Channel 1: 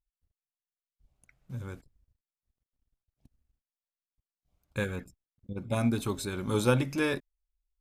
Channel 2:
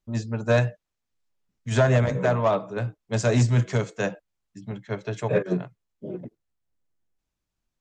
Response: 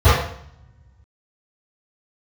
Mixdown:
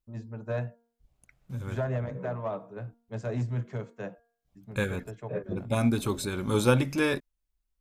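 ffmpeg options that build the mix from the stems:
-filter_complex "[0:a]volume=2.5dB[a];[1:a]equalizer=f=6.8k:w=0.4:g=-13.5,bandreject=f=233.7:t=h:w=4,bandreject=f=467.4:t=h:w=4,bandreject=f=701.1:t=h:w=4,bandreject=f=934.8:t=h:w=4,bandreject=f=1.1685k:t=h:w=4,bandreject=f=1.4022k:t=h:w=4,bandreject=f=1.6359k:t=h:w=4,volume=-10.5dB[b];[a][b]amix=inputs=2:normalize=0"

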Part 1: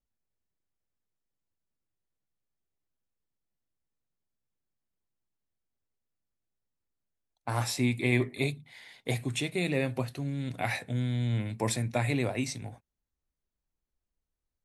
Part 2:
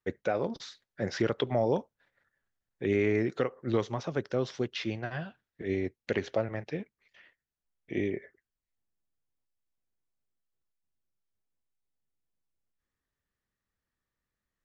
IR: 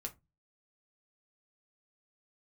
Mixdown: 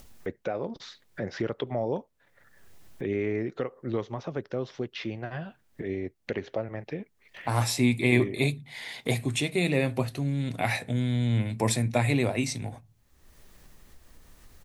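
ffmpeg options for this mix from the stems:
-filter_complex "[0:a]volume=2dB,asplit=2[a][b];[b]volume=-7.5dB[c];[1:a]highshelf=f=4.7k:g=-11,adelay=200,volume=-2dB[d];[2:a]atrim=start_sample=2205[e];[c][e]afir=irnorm=-1:irlink=0[f];[a][d][f]amix=inputs=3:normalize=0,equalizer=f=1.5k:t=o:w=0.44:g=-2.5,acompressor=mode=upward:threshold=-28dB:ratio=2.5"

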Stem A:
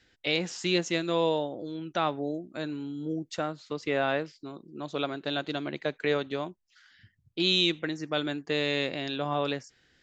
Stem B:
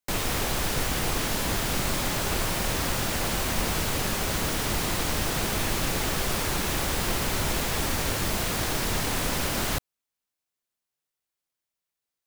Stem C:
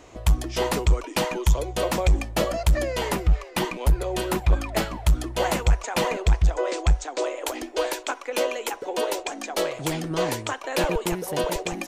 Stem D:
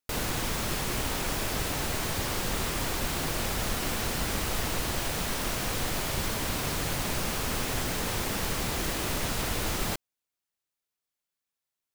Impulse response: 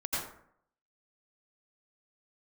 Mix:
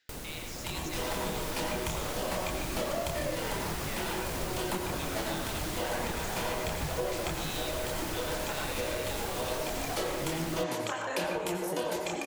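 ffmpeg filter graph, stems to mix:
-filter_complex "[0:a]highpass=f=1.4k:p=1,alimiter=limit=-24dB:level=0:latency=1,volume=-5dB,asplit=3[a][b][c];[b]volume=-6dB[d];[1:a]adelay=850,volume=-4.5dB[e];[2:a]highpass=140,flanger=delay=22.5:depth=7.4:speed=0.98,adelay=400,volume=2dB,asplit=2[f][g];[g]volume=-8dB[h];[3:a]acrossover=split=730|6200[i][j][k];[i]acompressor=threshold=-36dB:ratio=4[l];[j]acompressor=threshold=-45dB:ratio=4[m];[k]acompressor=threshold=-41dB:ratio=4[n];[l][m][n]amix=inputs=3:normalize=0,volume=-0.5dB[o];[c]apad=whole_len=541117[p];[f][p]sidechaincompress=threshold=-47dB:ratio=8:attack=16:release=565[q];[4:a]atrim=start_sample=2205[r];[d][h]amix=inputs=2:normalize=0[s];[s][r]afir=irnorm=-1:irlink=0[t];[a][e][q][o][t]amix=inputs=5:normalize=0,flanger=delay=0.3:depth=8.5:regen=-76:speed=1:shape=triangular,acompressor=threshold=-30dB:ratio=3"

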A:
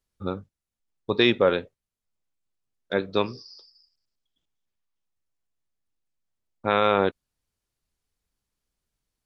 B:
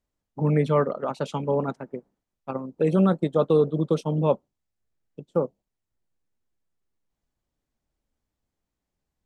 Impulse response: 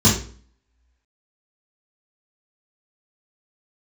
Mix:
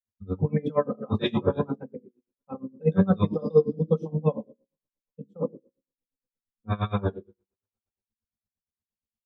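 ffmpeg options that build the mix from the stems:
-filter_complex "[0:a]volume=-12.5dB,asplit=2[a][b];[b]volume=-12dB[c];[1:a]aecho=1:1:3.9:0.55,volume=-2.5dB,asplit=2[d][e];[e]volume=-23.5dB[f];[2:a]atrim=start_sample=2205[g];[c][f]amix=inputs=2:normalize=0[h];[h][g]afir=irnorm=-1:irlink=0[i];[a][d][i]amix=inputs=3:normalize=0,afftdn=nr=16:nf=-35,bandreject=f=60:t=h:w=6,bandreject=f=120:t=h:w=6,bandreject=f=180:t=h:w=6,bandreject=f=240:t=h:w=6,bandreject=f=300:t=h:w=6,bandreject=f=360:t=h:w=6,bandreject=f=420:t=h:w=6,bandreject=f=480:t=h:w=6,bandreject=f=540:t=h:w=6,bandreject=f=600:t=h:w=6,aeval=exprs='val(0)*pow(10,-25*(0.5-0.5*cos(2*PI*8.6*n/s))/20)':c=same"

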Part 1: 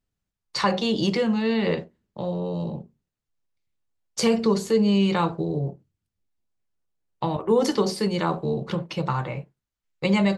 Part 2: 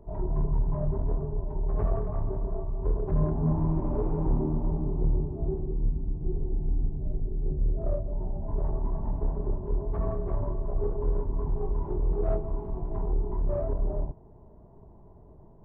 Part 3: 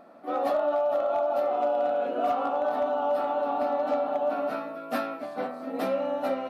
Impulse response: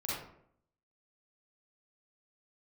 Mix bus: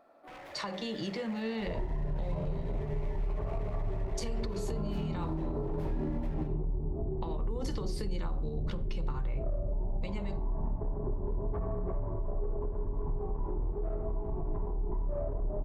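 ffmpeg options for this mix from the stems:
-filter_complex "[0:a]dynaudnorm=f=240:g=17:m=11.5dB,alimiter=limit=-9dB:level=0:latency=1:release=100,acompressor=threshold=-21dB:ratio=6,volume=-11dB,asplit=2[a][b];[b]volume=-21.5dB[c];[1:a]equalizer=f=130:w=1.5:g=-2.5,acompressor=threshold=-26dB:ratio=6,adelay=1600,volume=0.5dB,asplit=2[d][e];[e]volume=-7.5dB[f];[2:a]equalizer=f=200:t=o:w=1:g=-9.5,acompressor=threshold=-34dB:ratio=3,aeval=exprs='0.0188*(abs(mod(val(0)/0.0188+3,4)-2)-1)':c=same,volume=-11.5dB,asplit=2[g][h];[h]volume=-7.5dB[i];[3:a]atrim=start_sample=2205[j];[c][f][i]amix=inputs=3:normalize=0[k];[k][j]afir=irnorm=-1:irlink=0[l];[a][d][g][l]amix=inputs=4:normalize=0,alimiter=level_in=1.5dB:limit=-24dB:level=0:latency=1:release=137,volume=-1.5dB"

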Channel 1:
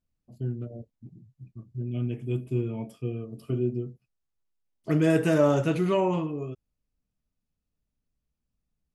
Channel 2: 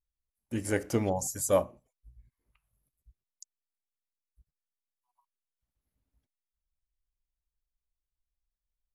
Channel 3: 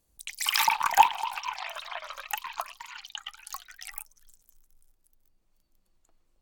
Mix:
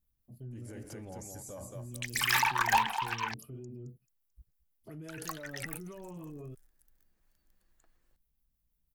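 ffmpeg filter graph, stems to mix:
-filter_complex "[0:a]acompressor=threshold=-28dB:ratio=3,acrossover=split=420[a][b];[a]aeval=exprs='val(0)*(1-0.5/2+0.5/2*cos(2*PI*6*n/s))':c=same[c];[b]aeval=exprs='val(0)*(1-0.5/2-0.5/2*cos(2*PI*6*n/s))':c=same[d];[c][d]amix=inputs=2:normalize=0,aexciter=amount=9.7:drive=4.2:freq=9.8k,volume=-6dB,asplit=2[e][f];[1:a]acompressor=threshold=-36dB:ratio=2.5,volume=1.5dB,asplit=2[g][h];[h]volume=-16dB[i];[2:a]equalizer=f=1.7k:w=3.3:g=11.5,asoftclip=type=tanh:threshold=-17.5dB,adelay=1750,volume=-2dB,asplit=3[j][k][l];[j]atrim=end=3.34,asetpts=PTS-STARTPTS,afade=t=out:st=3.336:d=0.004:c=hsin[m];[k]atrim=start=3.34:end=5.08,asetpts=PTS-STARTPTS,volume=0[n];[l]atrim=start=5.08,asetpts=PTS-STARTPTS,afade=t=in:d=0.004:c=hsin[o];[m][n][o]concat=n=3:v=0:a=1[p];[f]apad=whole_len=398879[q];[g][q]sidechaincompress=threshold=-47dB:ratio=8:attack=16:release=464[r];[e][r]amix=inputs=2:normalize=0,lowshelf=f=380:g=6,alimiter=level_in=14.5dB:limit=-24dB:level=0:latency=1:release=13,volume=-14.5dB,volume=0dB[s];[i]aecho=0:1:219|438|657|876|1095:1|0.35|0.122|0.0429|0.015[t];[p][s][t]amix=inputs=3:normalize=0"

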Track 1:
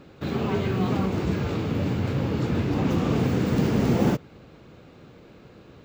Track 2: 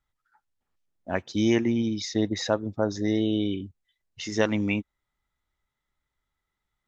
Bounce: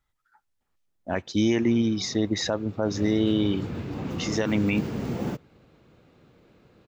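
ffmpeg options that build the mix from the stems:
-filter_complex "[0:a]adelay=1200,volume=-8.5dB,afade=t=in:st=2.8:d=0.24:silence=0.266073[a];[1:a]volume=3dB[b];[a][b]amix=inputs=2:normalize=0,alimiter=limit=-13dB:level=0:latency=1:release=32"

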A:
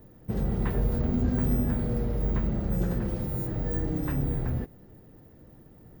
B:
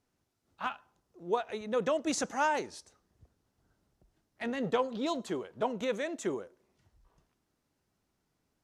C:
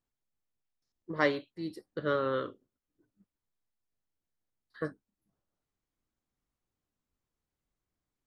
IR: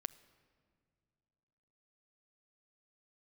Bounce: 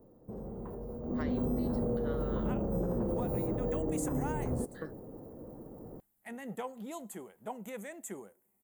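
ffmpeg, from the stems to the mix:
-filter_complex "[0:a]equalizer=f=250:t=o:w=1:g=7,equalizer=f=500:t=o:w=1:g=11,equalizer=f=1k:t=o:w=1:g=9,equalizer=f=2k:t=o:w=1:g=-10,equalizer=f=4k:t=o:w=1:g=-10,alimiter=limit=-21dB:level=0:latency=1:release=59,volume=-2dB,afade=t=in:st=1.01:d=0.31:silence=0.266073[a];[1:a]equalizer=f=200:t=o:w=0.33:g=10,equalizer=f=800:t=o:w=0.33:g=8,equalizer=f=2k:t=o:w=0.33:g=6,equalizer=f=4k:t=o:w=0.33:g=-8,equalizer=f=10k:t=o:w=0.33:g=-6,aexciter=amount=14.8:drive=8.6:freq=8.3k,adelay=1850,volume=-12dB[b];[2:a]acompressor=threshold=-38dB:ratio=6,volume=-1.5dB[c];[a][b][c]amix=inputs=3:normalize=0,alimiter=level_in=0.5dB:limit=-24dB:level=0:latency=1:release=247,volume=-0.5dB"

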